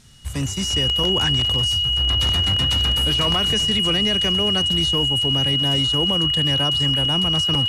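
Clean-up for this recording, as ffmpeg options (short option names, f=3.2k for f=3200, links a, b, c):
-af "bandreject=f=2.9k:w=30"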